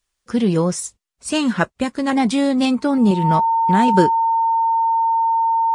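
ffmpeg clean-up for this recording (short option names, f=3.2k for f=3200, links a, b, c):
-af "bandreject=f=910:w=30"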